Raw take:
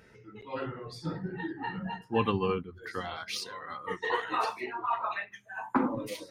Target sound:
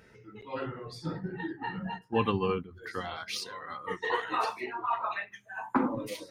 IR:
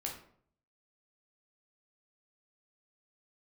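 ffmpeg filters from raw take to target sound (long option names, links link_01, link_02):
-filter_complex "[0:a]asettb=1/sr,asplit=3[link_01][link_02][link_03];[link_01]atrim=end=1.084[link_04];[link_02]atrim=start=1.08:end=2.71,asetpts=PTS-STARTPTS,afade=type=in:duration=0.004:curve=qsin,afade=type=out:start_time=1.626:duration=0.004:curve=qsin,agate=range=-7dB:threshold=-39dB:ratio=16:detection=peak[link_05];[link_03]atrim=start=2.706[link_06];[link_04][link_05]acrossfade=duration=0.004:curve1=hsin:curve2=qsin[link_07];[link_07][link_06]acrossfade=duration=0.004:curve1=qsin:curve2=hsin"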